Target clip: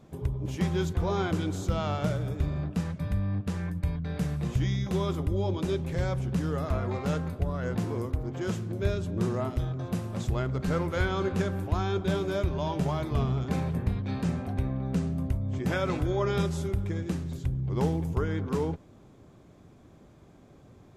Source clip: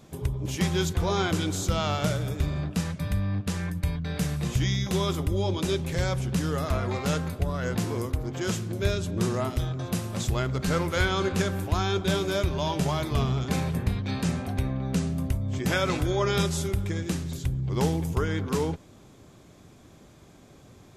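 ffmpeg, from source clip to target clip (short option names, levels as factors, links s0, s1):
-af "highshelf=f=2200:g=-11,volume=0.841"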